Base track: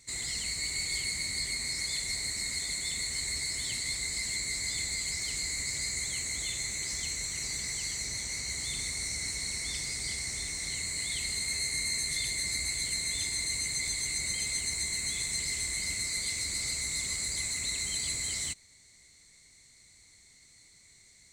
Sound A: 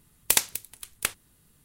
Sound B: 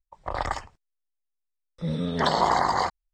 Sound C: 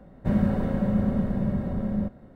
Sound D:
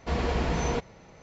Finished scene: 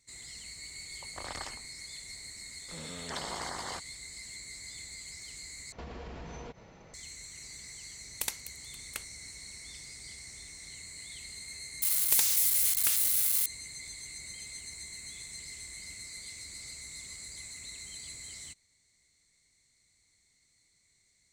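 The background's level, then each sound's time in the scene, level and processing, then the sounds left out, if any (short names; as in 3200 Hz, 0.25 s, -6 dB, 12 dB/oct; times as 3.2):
base track -11.5 dB
0.9 add B -16 dB + spectral compressor 2:1
5.72 replace with D -2.5 dB + compressor 12:1, threshold -37 dBFS
7.91 add A -13 dB
11.82 add A -11 dB + switching spikes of -11 dBFS
not used: C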